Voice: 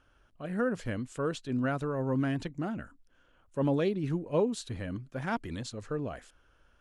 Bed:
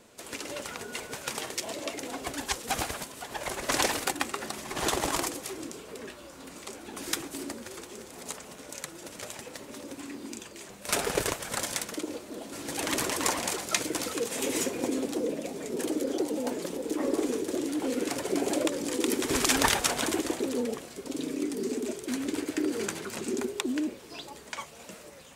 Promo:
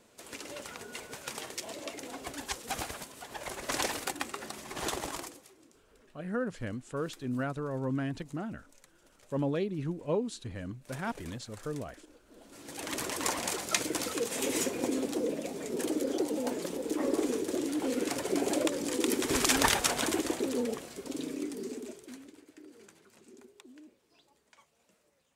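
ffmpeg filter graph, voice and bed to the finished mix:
-filter_complex "[0:a]adelay=5750,volume=-3dB[a];[1:a]volume=14.5dB,afade=t=out:st=4.85:d=0.66:silence=0.158489,afade=t=in:st=12.22:d=1.44:silence=0.1,afade=t=out:st=20.91:d=1.43:silence=0.0794328[b];[a][b]amix=inputs=2:normalize=0"

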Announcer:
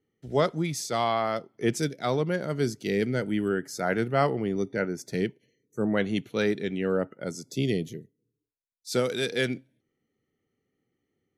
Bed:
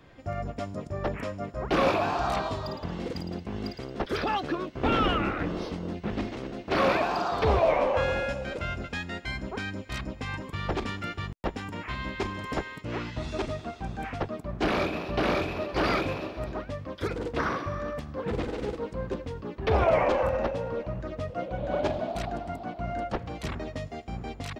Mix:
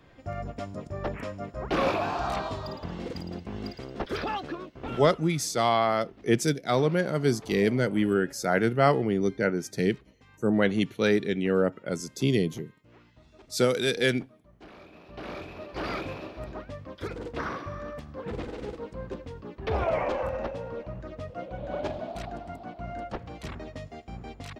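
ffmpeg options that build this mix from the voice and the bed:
-filter_complex "[0:a]adelay=4650,volume=2.5dB[a];[1:a]volume=16.5dB,afade=t=out:st=4.16:d=0.98:silence=0.0891251,afade=t=in:st=14.84:d=1.45:silence=0.11885[b];[a][b]amix=inputs=2:normalize=0"

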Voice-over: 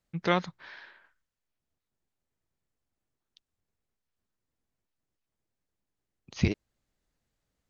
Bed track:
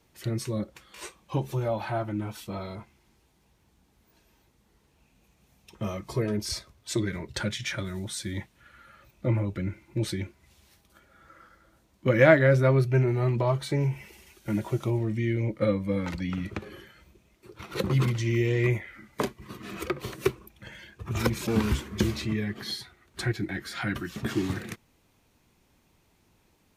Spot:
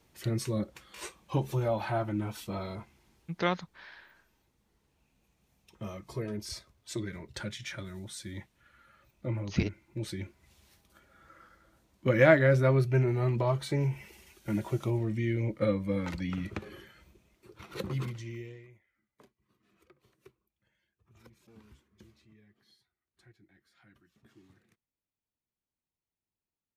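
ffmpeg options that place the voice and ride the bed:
-filter_complex "[0:a]adelay=3150,volume=-3dB[a];[1:a]volume=4dB,afade=t=out:st=3.02:d=0.76:silence=0.446684,afade=t=in:st=10.04:d=0.42:silence=0.562341,afade=t=out:st=17.1:d=1.56:silence=0.0354813[b];[a][b]amix=inputs=2:normalize=0"

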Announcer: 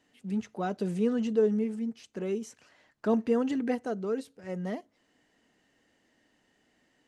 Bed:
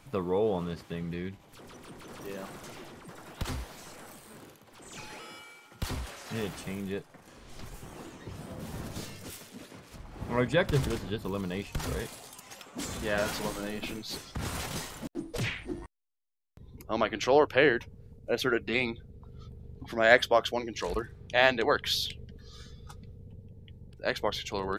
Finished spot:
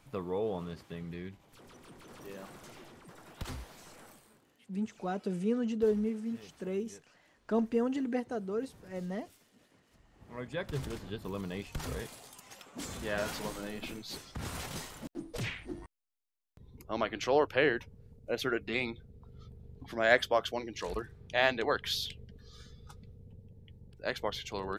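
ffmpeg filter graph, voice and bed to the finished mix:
-filter_complex "[0:a]adelay=4450,volume=-3.5dB[a];[1:a]volume=8dB,afade=t=out:st=4.05:d=0.37:silence=0.237137,afade=t=in:st=10.22:d=1.17:silence=0.199526[b];[a][b]amix=inputs=2:normalize=0"

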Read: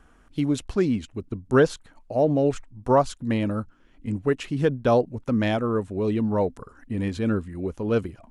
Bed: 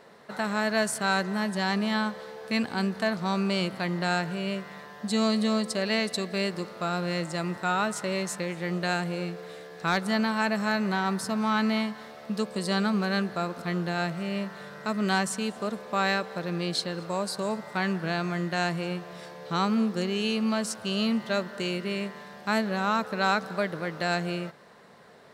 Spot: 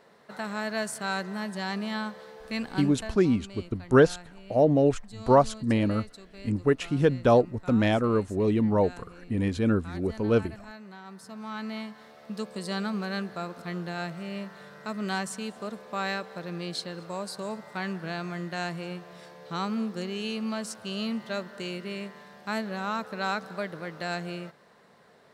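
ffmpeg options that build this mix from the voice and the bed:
-filter_complex "[0:a]adelay=2400,volume=0dB[a];[1:a]volume=8.5dB,afade=t=out:st=2.76:d=0.44:silence=0.211349,afade=t=in:st=11.04:d=1.41:silence=0.211349[b];[a][b]amix=inputs=2:normalize=0"

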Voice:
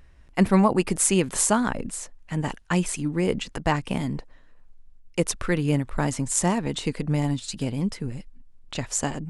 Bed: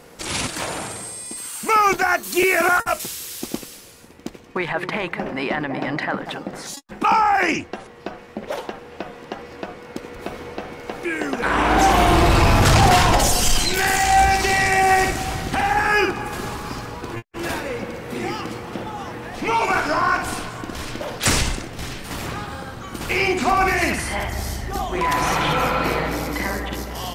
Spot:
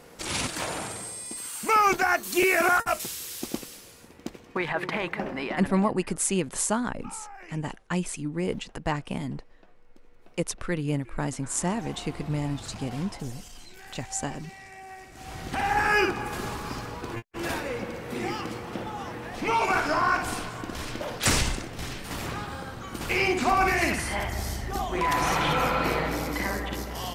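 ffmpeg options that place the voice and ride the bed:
-filter_complex "[0:a]adelay=5200,volume=-5dB[a];[1:a]volume=19dB,afade=t=out:st=5.21:d=0.77:silence=0.0668344,afade=t=in:st=15.1:d=0.71:silence=0.0668344[b];[a][b]amix=inputs=2:normalize=0"

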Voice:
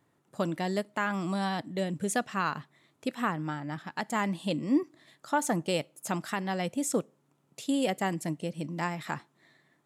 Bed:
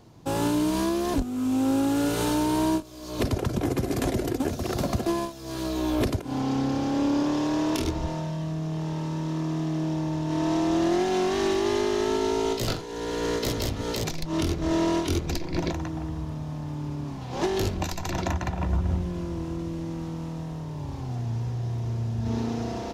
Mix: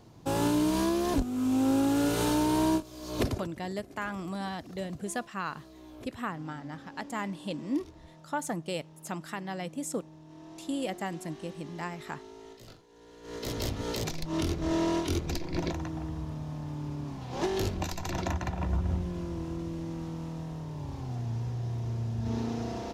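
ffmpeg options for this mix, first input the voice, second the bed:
-filter_complex "[0:a]adelay=3000,volume=-5dB[a];[1:a]volume=17dB,afade=t=out:st=3.22:d=0.26:silence=0.0891251,afade=t=in:st=13.23:d=0.41:silence=0.112202[b];[a][b]amix=inputs=2:normalize=0"

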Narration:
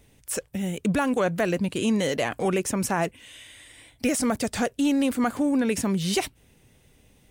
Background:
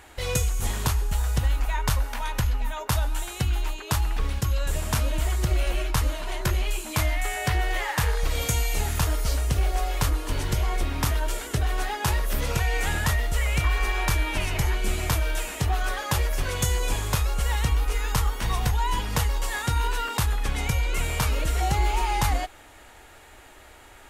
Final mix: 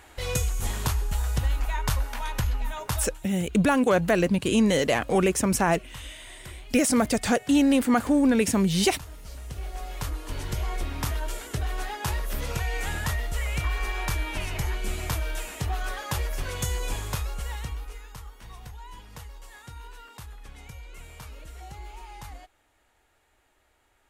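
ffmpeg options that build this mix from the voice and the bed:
-filter_complex "[0:a]adelay=2700,volume=2.5dB[a];[1:a]volume=12dB,afade=t=out:st=2.83:d=0.35:silence=0.149624,afade=t=in:st=9.21:d=1.46:silence=0.199526,afade=t=out:st=16.97:d=1.12:silence=0.199526[b];[a][b]amix=inputs=2:normalize=0"

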